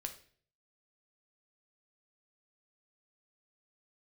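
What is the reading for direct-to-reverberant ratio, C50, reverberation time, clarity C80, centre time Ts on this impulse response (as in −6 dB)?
5.0 dB, 11.5 dB, 0.50 s, 16.0 dB, 10 ms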